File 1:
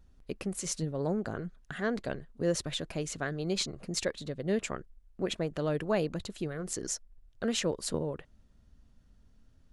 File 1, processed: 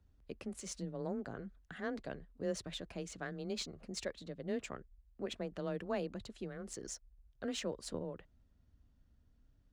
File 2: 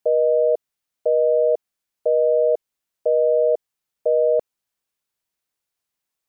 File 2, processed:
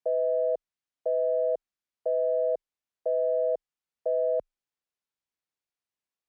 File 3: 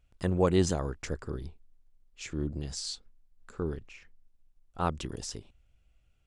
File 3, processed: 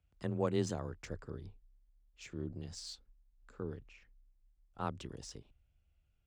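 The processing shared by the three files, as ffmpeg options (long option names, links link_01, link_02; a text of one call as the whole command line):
ffmpeg -i in.wav -af "adynamicsmooth=sensitivity=6.5:basefreq=7900,afreqshift=20,volume=-8.5dB" out.wav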